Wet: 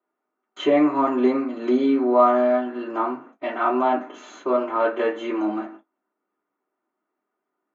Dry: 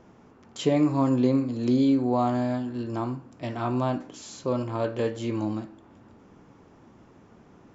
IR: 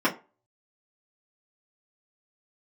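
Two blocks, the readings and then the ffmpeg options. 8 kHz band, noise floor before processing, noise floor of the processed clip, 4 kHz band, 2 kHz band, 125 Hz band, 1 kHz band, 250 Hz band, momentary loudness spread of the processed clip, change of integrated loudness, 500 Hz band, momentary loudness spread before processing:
no reading, -55 dBFS, -82 dBFS, +2.0 dB, +9.5 dB, under -15 dB, +9.0 dB, +1.5 dB, 13 LU, +4.5 dB, +7.5 dB, 13 LU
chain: -filter_complex "[0:a]agate=range=0.0251:threshold=0.00562:ratio=16:detection=peak,acrossover=split=530 3000:gain=0.126 1 0.224[s0][s1][s2];[s0][s1][s2]amix=inputs=3:normalize=0[s3];[1:a]atrim=start_sample=2205,atrim=end_sample=3528,asetrate=52920,aresample=44100[s4];[s3][s4]afir=irnorm=-1:irlink=0,volume=0.75"

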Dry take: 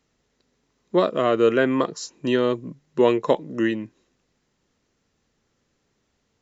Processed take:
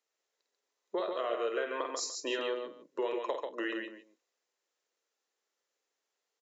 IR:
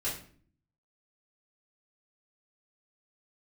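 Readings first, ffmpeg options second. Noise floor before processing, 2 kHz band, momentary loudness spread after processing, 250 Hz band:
-72 dBFS, -9.5 dB, 7 LU, -18.0 dB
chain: -af "afftdn=nr=15:nf=-42,highpass=f=430:w=0.5412,highpass=f=430:w=1.3066,highshelf=f=4800:g=5.5,acompressor=threshold=0.0224:ratio=6,aecho=1:1:51|140|181|293:0.447|0.596|0.119|0.112"

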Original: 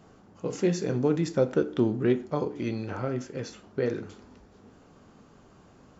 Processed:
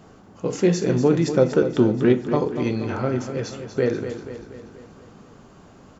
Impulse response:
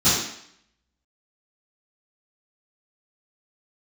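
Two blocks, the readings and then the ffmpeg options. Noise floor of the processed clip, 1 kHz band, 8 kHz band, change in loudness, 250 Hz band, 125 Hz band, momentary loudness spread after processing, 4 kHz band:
-49 dBFS, +7.0 dB, no reading, +7.0 dB, +7.0 dB, +7.0 dB, 15 LU, +7.0 dB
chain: -af "aecho=1:1:240|480|720|960|1200|1440:0.316|0.174|0.0957|0.0526|0.0289|0.0159,volume=2.11"

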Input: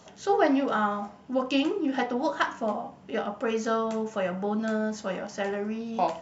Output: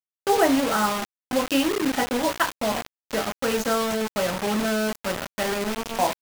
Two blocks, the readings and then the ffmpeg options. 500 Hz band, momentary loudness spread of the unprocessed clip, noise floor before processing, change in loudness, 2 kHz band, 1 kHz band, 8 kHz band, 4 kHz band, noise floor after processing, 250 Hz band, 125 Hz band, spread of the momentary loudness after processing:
+3.0 dB, 8 LU, -51 dBFS, +4.0 dB, +5.5 dB, +3.5 dB, no reading, +9.0 dB, under -85 dBFS, +3.0 dB, +3.5 dB, 8 LU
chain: -af "acrusher=bits=4:mix=0:aa=0.000001,volume=1.41"

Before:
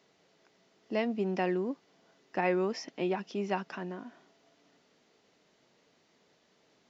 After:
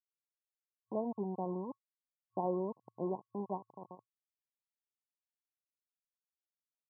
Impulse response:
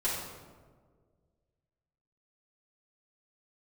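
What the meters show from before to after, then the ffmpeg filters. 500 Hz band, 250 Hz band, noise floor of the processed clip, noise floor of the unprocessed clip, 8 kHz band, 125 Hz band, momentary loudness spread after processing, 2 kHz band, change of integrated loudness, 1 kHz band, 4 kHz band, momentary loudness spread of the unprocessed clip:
-6.5 dB, -6.5 dB, under -85 dBFS, -69 dBFS, no reading, -5.0 dB, 17 LU, under -40 dB, -6.0 dB, -5.5 dB, under -35 dB, 12 LU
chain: -af "aeval=exprs='val(0)*gte(abs(val(0)),0.0237)':c=same,afftfilt=real='re*between(b*sr/4096,110,1100)':imag='im*between(b*sr/4096,110,1100)':win_size=4096:overlap=0.75,adynamicequalizer=threshold=0.00631:dfrequency=450:dqfactor=0.72:tfrequency=450:tqfactor=0.72:attack=5:release=100:ratio=0.375:range=3:mode=cutabove:tftype=bell,volume=0.631"

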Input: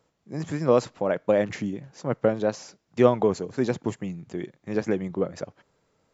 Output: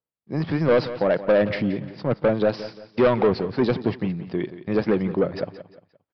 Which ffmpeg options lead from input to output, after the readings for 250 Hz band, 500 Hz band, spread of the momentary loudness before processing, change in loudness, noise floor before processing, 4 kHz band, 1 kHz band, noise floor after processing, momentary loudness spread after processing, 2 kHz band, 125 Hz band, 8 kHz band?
+4.0 dB, +3.0 dB, 14 LU, +3.0 dB, -72 dBFS, +6.0 dB, +2.0 dB, under -85 dBFS, 10 LU, +6.0 dB, +4.5 dB, no reading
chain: -af "agate=range=0.0224:threshold=0.00631:ratio=3:detection=peak,aresample=11025,asoftclip=type=tanh:threshold=0.106,aresample=44100,aecho=1:1:175|350|525:0.2|0.0718|0.0259,volume=2.24"

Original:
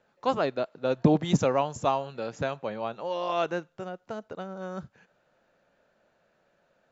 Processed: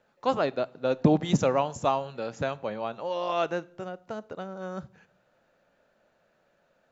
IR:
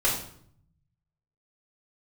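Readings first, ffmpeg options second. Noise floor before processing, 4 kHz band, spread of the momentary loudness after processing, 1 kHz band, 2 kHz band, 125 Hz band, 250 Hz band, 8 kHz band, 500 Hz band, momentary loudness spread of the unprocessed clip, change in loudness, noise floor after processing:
-70 dBFS, 0.0 dB, 15 LU, 0.0 dB, 0.0 dB, -0.5 dB, 0.0 dB, no reading, +0.5 dB, 15 LU, +0.5 dB, -69 dBFS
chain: -filter_complex "[0:a]asplit=2[s0][s1];[1:a]atrim=start_sample=2205[s2];[s1][s2]afir=irnorm=-1:irlink=0,volume=0.0316[s3];[s0][s3]amix=inputs=2:normalize=0"

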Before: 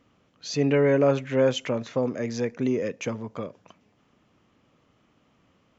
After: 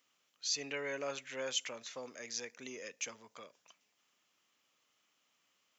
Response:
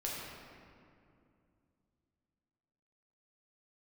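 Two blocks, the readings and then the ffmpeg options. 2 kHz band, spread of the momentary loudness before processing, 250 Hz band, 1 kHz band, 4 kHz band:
-8.5 dB, 15 LU, -25.5 dB, -14.0 dB, -2.5 dB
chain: -af "aderivative,volume=1.41"

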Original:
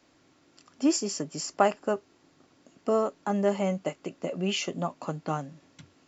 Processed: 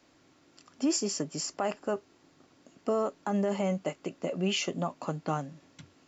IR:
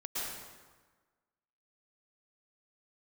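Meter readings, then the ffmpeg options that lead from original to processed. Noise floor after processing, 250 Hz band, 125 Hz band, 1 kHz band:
-64 dBFS, -2.0 dB, -0.5 dB, -5.0 dB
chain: -af "alimiter=limit=0.106:level=0:latency=1:release=35"

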